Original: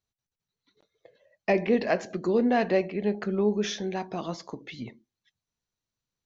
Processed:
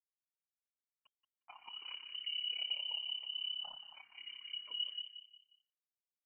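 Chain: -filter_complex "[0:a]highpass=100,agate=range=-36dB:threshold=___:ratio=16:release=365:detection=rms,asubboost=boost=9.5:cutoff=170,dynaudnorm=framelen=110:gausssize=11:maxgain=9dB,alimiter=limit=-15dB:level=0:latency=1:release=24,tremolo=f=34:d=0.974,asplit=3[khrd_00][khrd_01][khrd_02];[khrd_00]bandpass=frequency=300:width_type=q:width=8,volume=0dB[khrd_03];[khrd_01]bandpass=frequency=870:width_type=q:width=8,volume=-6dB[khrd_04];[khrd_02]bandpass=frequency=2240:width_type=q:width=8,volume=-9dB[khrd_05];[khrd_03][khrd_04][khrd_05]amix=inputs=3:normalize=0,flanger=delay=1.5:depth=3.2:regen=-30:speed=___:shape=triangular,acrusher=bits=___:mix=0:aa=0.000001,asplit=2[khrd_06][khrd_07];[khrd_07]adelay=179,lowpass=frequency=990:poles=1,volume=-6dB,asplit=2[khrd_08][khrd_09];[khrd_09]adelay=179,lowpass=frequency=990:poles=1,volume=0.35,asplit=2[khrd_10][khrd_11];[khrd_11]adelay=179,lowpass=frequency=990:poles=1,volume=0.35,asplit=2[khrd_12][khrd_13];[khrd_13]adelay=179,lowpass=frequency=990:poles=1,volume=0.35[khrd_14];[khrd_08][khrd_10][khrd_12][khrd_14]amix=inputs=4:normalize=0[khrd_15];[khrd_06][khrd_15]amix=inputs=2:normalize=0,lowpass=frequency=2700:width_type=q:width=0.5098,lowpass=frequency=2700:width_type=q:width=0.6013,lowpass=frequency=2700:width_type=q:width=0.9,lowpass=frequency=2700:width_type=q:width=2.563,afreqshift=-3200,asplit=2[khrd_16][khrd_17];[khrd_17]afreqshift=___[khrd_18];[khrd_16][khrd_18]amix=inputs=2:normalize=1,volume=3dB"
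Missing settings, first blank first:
-60dB, 1.6, 10, 0.4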